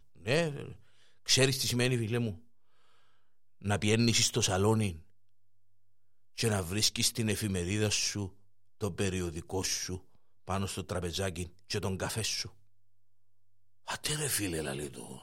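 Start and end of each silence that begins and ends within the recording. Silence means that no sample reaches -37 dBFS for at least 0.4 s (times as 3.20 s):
0.72–1.28 s
2.33–3.65 s
4.95–6.38 s
8.28–8.82 s
9.97–10.48 s
12.46–13.88 s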